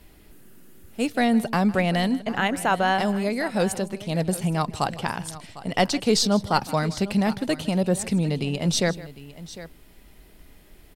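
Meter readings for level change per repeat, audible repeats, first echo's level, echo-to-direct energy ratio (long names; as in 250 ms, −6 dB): repeats not evenly spaced, 2, −19.0 dB, −14.5 dB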